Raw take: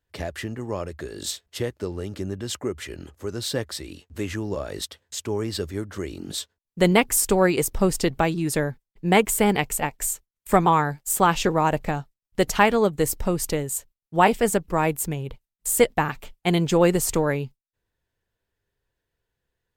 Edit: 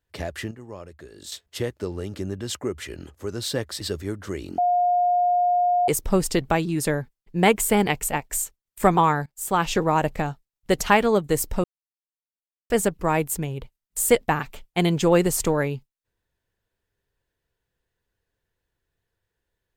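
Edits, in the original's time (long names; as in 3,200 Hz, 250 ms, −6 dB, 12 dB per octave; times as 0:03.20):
0:00.51–0:01.32: clip gain −9.5 dB
0:03.81–0:05.50: remove
0:06.27–0:07.57: beep over 712 Hz −17 dBFS
0:10.95–0:11.62: fade in equal-power, from −21 dB
0:13.33–0:14.39: silence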